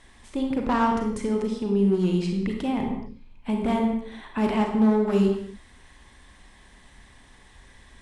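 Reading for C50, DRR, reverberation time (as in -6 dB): 4.0 dB, 2.0 dB, no single decay rate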